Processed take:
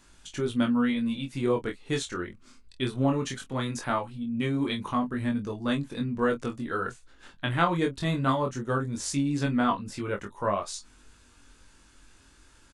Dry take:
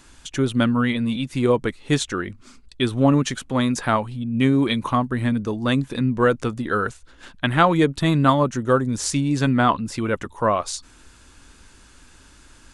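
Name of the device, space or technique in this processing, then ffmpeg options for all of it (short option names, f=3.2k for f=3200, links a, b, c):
double-tracked vocal: -filter_complex "[0:a]asplit=2[a][b];[b]adelay=25,volume=-11dB[c];[a][c]amix=inputs=2:normalize=0,flanger=delay=20:depth=3.1:speed=0.19,volume=-5dB"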